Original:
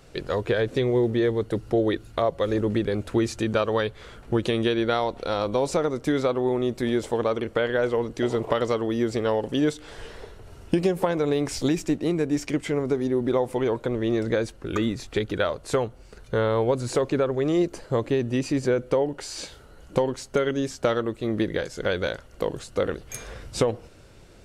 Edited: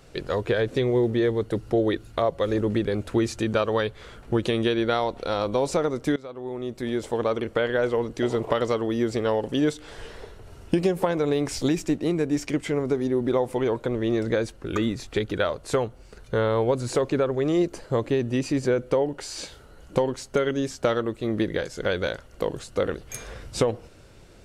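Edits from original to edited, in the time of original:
6.16–7.31 fade in linear, from -21.5 dB

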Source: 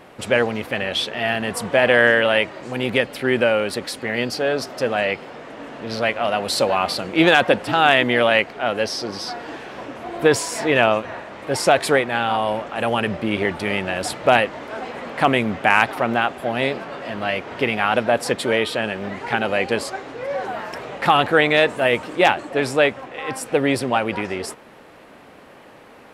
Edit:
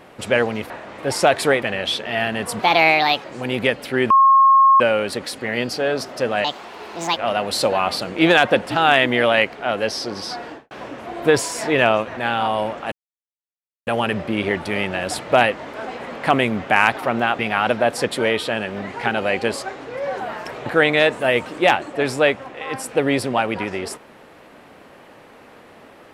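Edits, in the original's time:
1.67–2.55 speed 135%
3.41 add tone 1080 Hz -8.5 dBFS 0.70 s
5.05–6.14 speed 150%
9.42–9.68 studio fade out
11.14–12.06 move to 0.7
12.81 insert silence 0.95 s
16.33–17.66 cut
20.93–21.23 cut

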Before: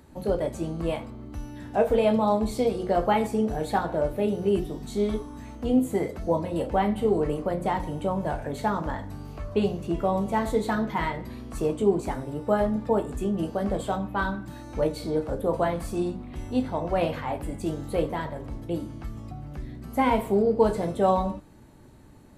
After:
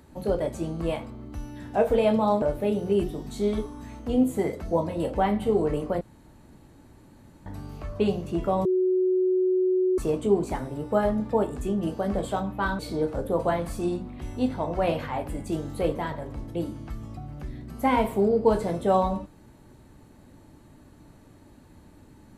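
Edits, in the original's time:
2.42–3.98 cut
7.57–9.02 room tone
10.21–11.54 bleep 370 Hz -19.5 dBFS
14.35–14.93 cut

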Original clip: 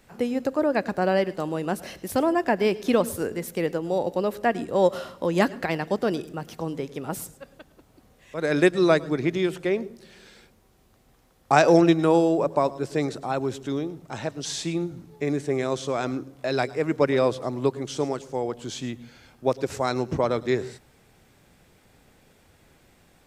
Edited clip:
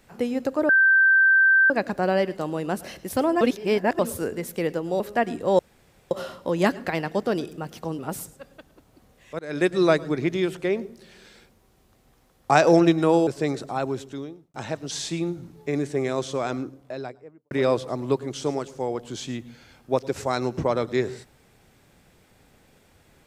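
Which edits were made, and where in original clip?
0.69 add tone 1560 Hz -13.5 dBFS 1.01 s
2.4–2.98 reverse
3.99–4.28 cut
4.87 insert room tone 0.52 s
6.75–7 cut
8.4–8.79 fade in, from -19 dB
12.28–12.81 cut
13.38–14.08 fade out
15.89–17.05 studio fade out

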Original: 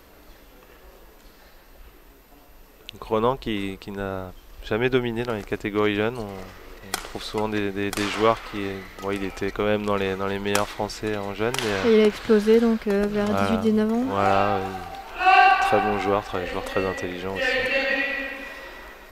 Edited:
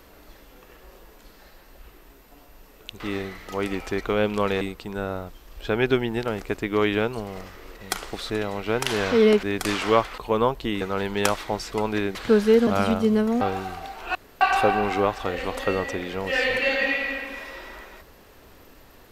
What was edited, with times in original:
3–3.63 swap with 8.5–10.11
7.32–7.75 swap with 11.02–12.15
12.67–13.29 cut
14.03–14.5 cut
15.24–15.5 room tone

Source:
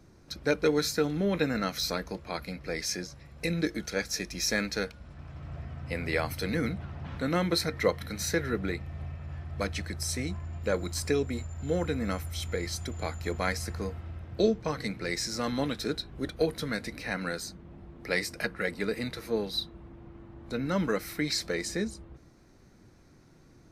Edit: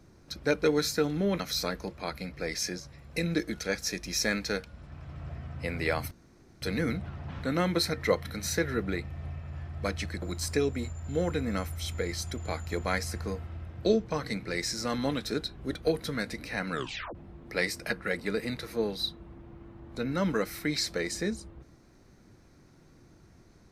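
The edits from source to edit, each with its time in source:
1.4–1.67 cut
6.38 insert room tone 0.51 s
9.98–10.76 cut
17.26 tape stop 0.43 s

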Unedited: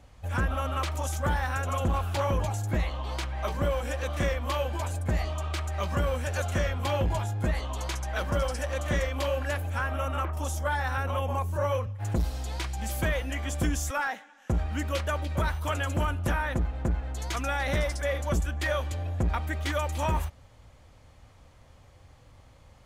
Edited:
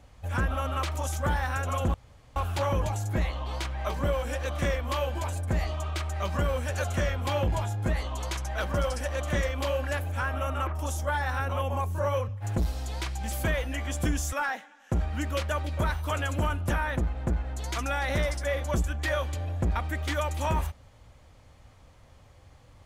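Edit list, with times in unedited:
1.94 insert room tone 0.42 s

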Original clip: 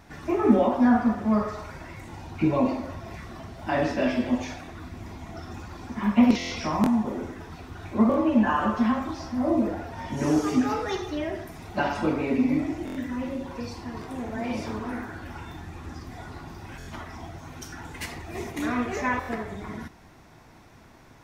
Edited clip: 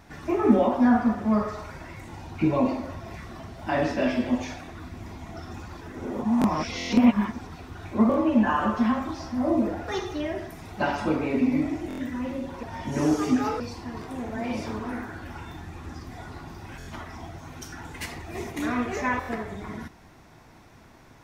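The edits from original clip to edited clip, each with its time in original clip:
5.81–7.47 reverse
9.88–10.85 move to 13.6

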